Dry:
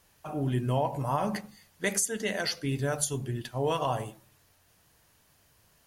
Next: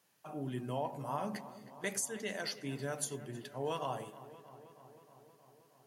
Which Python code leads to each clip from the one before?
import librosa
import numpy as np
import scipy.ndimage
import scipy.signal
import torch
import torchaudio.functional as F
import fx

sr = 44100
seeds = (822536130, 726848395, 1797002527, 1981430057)

y = scipy.signal.sosfilt(scipy.signal.butter(4, 140.0, 'highpass', fs=sr, output='sos'), x)
y = fx.echo_filtered(y, sr, ms=316, feedback_pct=73, hz=3300.0, wet_db=-15.5)
y = y * librosa.db_to_amplitude(-8.5)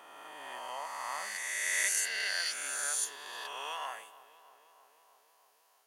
y = fx.spec_swells(x, sr, rise_s=2.62)
y = scipy.signal.sosfilt(scipy.signal.butter(2, 1200.0, 'highpass', fs=sr, output='sos'), y)
y = fx.dynamic_eq(y, sr, hz=1700.0, q=1.2, threshold_db=-52.0, ratio=4.0, max_db=5)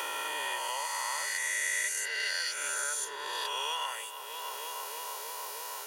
y = x + 0.77 * np.pad(x, (int(2.1 * sr / 1000.0), 0))[:len(x)]
y = fx.band_squash(y, sr, depth_pct=100)